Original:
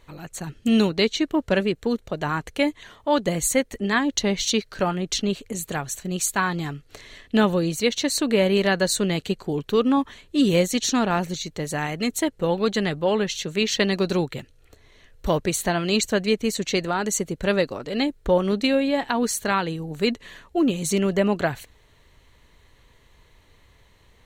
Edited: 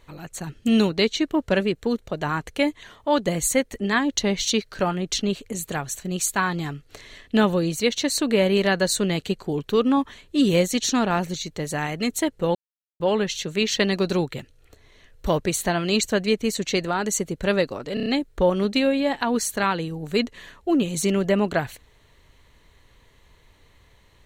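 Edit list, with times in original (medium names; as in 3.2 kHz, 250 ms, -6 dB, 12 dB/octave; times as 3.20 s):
12.55–13.00 s: mute
17.94 s: stutter 0.03 s, 5 plays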